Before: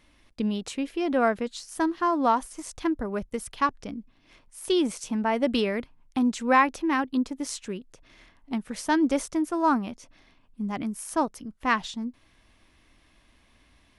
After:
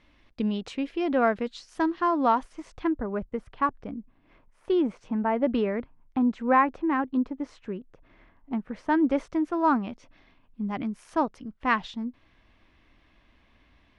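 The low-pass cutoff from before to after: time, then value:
2.24 s 3.9 kHz
3.28 s 1.6 kHz
8.73 s 1.6 kHz
9.62 s 3.3 kHz

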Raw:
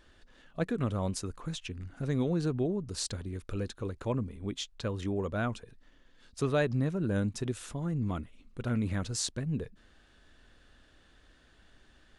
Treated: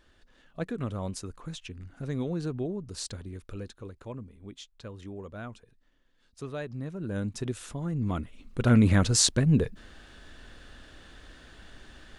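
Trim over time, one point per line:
3.28 s -2 dB
4.15 s -8.5 dB
6.70 s -8.5 dB
7.42 s +1 dB
7.92 s +1 dB
8.73 s +11 dB

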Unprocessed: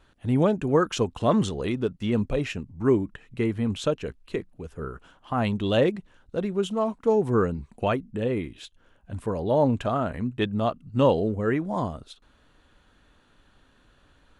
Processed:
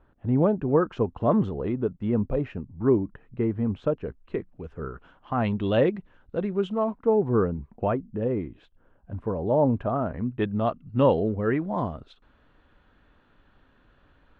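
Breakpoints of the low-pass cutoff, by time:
4.01 s 1.2 kHz
4.62 s 2.4 kHz
6.64 s 2.4 kHz
7.26 s 1.2 kHz
10.02 s 1.2 kHz
10.69 s 2.5 kHz

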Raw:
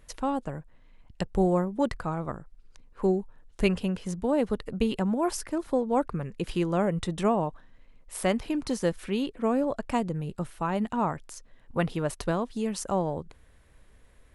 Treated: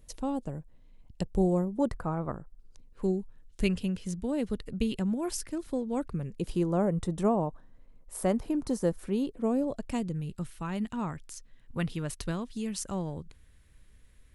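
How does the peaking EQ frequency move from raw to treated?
peaking EQ -12 dB 2.2 oct
1.66 s 1.5 kHz
2.22 s 6 kHz
3.05 s 890 Hz
6.06 s 890 Hz
6.72 s 2.7 kHz
9.04 s 2.7 kHz
10.29 s 710 Hz

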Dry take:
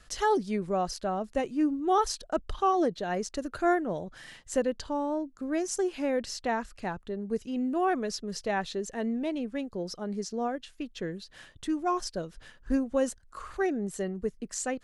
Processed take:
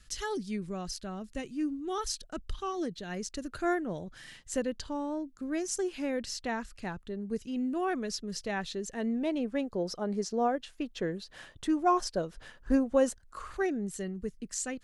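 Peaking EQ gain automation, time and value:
peaking EQ 710 Hz 2 oct
2.97 s -14.5 dB
3.62 s -6.5 dB
8.82 s -6.5 dB
9.48 s +4 dB
12.82 s +4 dB
13.58 s -2.5 dB
13.95 s -9.5 dB

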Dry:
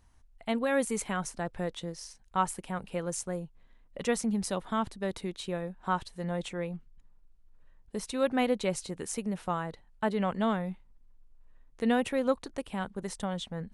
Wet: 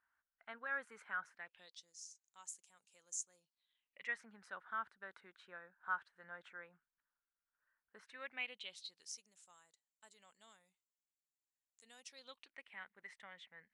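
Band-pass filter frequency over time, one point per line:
band-pass filter, Q 6.4
1.29 s 1.5 kHz
1.89 s 6.8 kHz
3.27 s 6.8 kHz
4.26 s 1.5 kHz
7.99 s 1.5 kHz
9.38 s 7.3 kHz
11.93 s 7.3 kHz
12.59 s 2 kHz

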